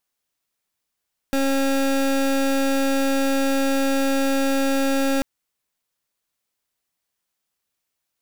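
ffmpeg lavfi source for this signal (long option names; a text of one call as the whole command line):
ffmpeg -f lavfi -i "aevalsrc='0.1*(2*lt(mod(272*t,1),0.26)-1)':duration=3.89:sample_rate=44100" out.wav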